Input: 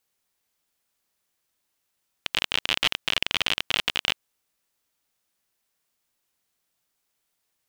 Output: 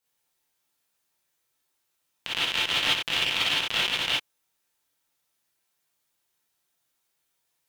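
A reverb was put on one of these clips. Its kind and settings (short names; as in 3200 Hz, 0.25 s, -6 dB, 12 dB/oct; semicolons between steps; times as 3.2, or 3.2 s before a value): non-linear reverb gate 80 ms rising, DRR -7 dB; gain -7 dB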